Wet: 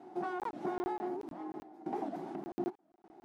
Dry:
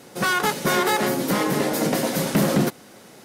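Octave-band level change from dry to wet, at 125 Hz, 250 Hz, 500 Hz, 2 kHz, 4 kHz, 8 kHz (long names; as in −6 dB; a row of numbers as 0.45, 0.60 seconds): −27.5 dB, −16.5 dB, −16.0 dB, −26.0 dB, −34.5 dB, below −35 dB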